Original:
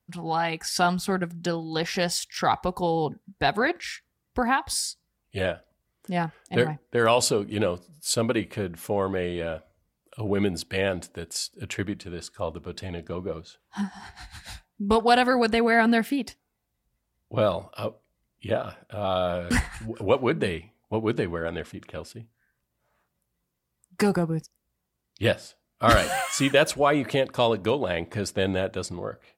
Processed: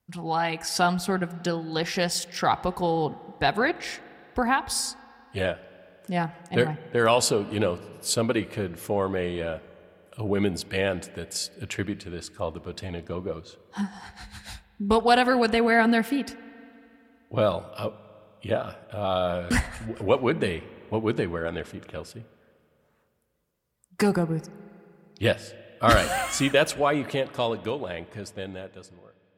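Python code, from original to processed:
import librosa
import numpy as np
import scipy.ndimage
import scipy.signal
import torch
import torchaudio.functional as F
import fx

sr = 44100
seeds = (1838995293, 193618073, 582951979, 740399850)

y = fx.fade_out_tail(x, sr, length_s=3.14)
y = fx.rev_spring(y, sr, rt60_s=2.9, pass_ms=(39, 58), chirp_ms=75, drr_db=17.5)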